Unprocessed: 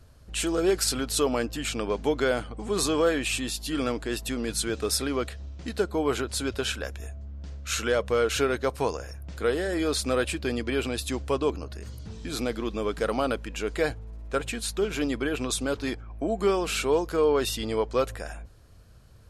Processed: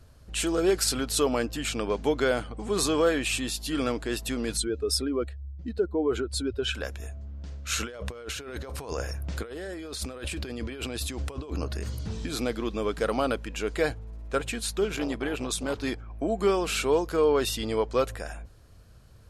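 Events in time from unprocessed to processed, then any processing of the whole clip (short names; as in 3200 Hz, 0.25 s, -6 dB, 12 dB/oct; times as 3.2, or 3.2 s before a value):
4.57–6.75 spectral contrast raised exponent 1.7
7.8–12.27 negative-ratio compressor -35 dBFS
14.96–15.75 core saturation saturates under 510 Hz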